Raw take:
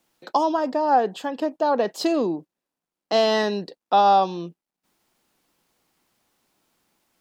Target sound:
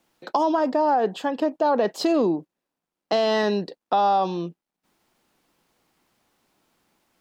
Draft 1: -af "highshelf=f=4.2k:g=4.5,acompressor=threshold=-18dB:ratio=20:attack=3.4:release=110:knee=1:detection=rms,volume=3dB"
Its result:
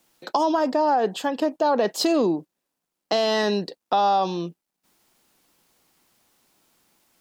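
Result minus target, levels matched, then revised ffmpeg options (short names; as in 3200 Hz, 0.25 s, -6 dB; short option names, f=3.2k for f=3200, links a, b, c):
8000 Hz band +7.0 dB
-af "highshelf=f=4.2k:g=-5.5,acompressor=threshold=-18dB:ratio=20:attack=3.4:release=110:knee=1:detection=rms,volume=3dB"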